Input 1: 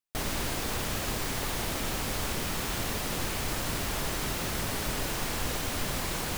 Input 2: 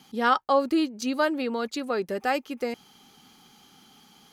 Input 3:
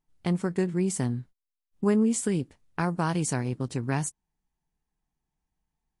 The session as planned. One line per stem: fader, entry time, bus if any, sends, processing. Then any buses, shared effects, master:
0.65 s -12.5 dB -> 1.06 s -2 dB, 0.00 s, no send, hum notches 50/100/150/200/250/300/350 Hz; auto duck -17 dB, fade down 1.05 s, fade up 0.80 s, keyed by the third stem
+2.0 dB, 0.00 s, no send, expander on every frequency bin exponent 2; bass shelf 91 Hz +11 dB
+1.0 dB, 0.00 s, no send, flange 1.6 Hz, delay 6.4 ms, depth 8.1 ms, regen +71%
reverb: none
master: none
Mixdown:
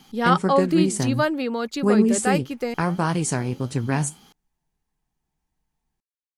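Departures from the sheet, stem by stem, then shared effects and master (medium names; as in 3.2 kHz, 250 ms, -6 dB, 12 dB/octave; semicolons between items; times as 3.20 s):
stem 1: muted; stem 2: missing expander on every frequency bin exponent 2; stem 3 +1.0 dB -> +9.0 dB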